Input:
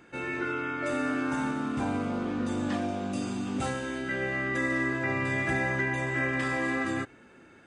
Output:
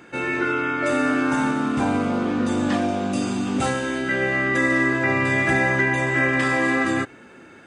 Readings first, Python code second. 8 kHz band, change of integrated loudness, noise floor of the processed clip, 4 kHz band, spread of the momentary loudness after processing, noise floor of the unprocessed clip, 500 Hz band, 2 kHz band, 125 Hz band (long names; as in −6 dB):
+9.0 dB, +8.5 dB, −46 dBFS, +9.0 dB, 5 LU, −55 dBFS, +9.0 dB, +9.0 dB, +6.5 dB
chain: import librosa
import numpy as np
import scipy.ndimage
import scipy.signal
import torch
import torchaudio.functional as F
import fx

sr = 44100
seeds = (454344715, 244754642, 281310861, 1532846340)

y = fx.low_shelf(x, sr, hz=66.0, db=-10.5)
y = y * librosa.db_to_amplitude(9.0)